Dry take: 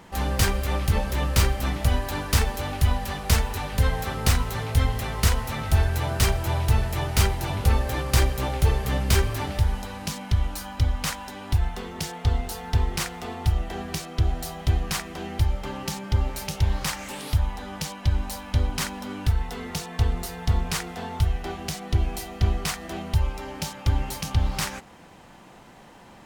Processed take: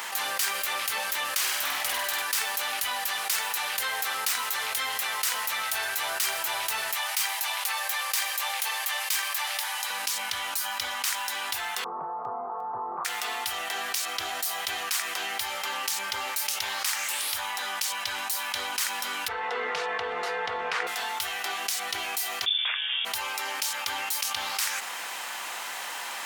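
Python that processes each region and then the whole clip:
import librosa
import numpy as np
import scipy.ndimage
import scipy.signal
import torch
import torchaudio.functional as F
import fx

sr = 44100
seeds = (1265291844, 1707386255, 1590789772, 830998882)

y = fx.chain(x, sr, fx.room_flutter(wall_m=8.4, rt60_s=0.7),
    fx.doppler_dist(depth_ms=0.38), at=(1.37, 2.22))
y = fx.chain(y, sr, fx.highpass(hz=640.0, slope=24),
    fx.notch(hz=1400.0, q=10.0), at=(6.95, 9.9))
y = fx.chain(y, sr, fx.cheby1_bandpass(low_hz=110.0, high_hz=1200.0, order=5),
    fx.gate_hold(open_db=-30.0, close_db=-32.0, hold_ms=71.0, range_db=-21, attack_ms=1.4, release_ms=100.0), at=(11.84, 13.05))
y = fx.chain(y, sr, fx.lowpass(hz=1800.0, slope=12),
    fx.peak_eq(hz=480.0, db=14.5, octaves=0.27),
    fx.env_flatten(amount_pct=50), at=(19.28, 20.87))
y = fx.chain(y, sr, fx.freq_invert(carrier_hz=3500),
    fx.highpass(hz=430.0, slope=24), at=(22.46, 23.05))
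y = scipy.signal.sosfilt(scipy.signal.butter(2, 1300.0, 'highpass', fs=sr, output='sos'), y)
y = fx.high_shelf(y, sr, hz=10000.0, db=9.5)
y = fx.env_flatten(y, sr, amount_pct=70)
y = y * librosa.db_to_amplitude(-7.0)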